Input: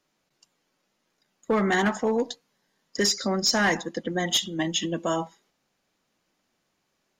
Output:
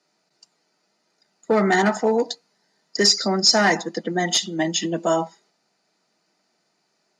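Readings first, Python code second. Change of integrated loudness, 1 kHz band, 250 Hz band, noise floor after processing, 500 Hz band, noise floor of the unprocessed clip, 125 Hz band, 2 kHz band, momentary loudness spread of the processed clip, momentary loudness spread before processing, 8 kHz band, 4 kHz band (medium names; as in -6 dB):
+5.0 dB, +6.0 dB, +3.5 dB, -71 dBFS, +5.5 dB, -76 dBFS, +3.0 dB, +3.5 dB, 11 LU, 9 LU, +5.0 dB, +6.0 dB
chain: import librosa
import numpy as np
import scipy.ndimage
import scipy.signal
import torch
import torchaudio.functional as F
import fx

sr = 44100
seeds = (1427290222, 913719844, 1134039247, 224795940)

y = fx.cabinet(x, sr, low_hz=160.0, low_slope=24, high_hz=10000.0, hz=(260.0, 600.0, 3200.0, 4600.0), db=(-6, 6, -7, 8))
y = fx.notch_comb(y, sr, f0_hz=550.0)
y = y * librosa.db_to_amplitude(5.5)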